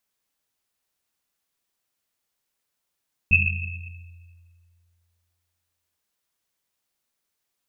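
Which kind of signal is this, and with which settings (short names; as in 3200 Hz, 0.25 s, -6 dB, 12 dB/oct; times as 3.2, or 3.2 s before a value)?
Risset drum length 2.65 s, pitch 86 Hz, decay 2.33 s, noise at 2600 Hz, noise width 140 Hz, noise 55%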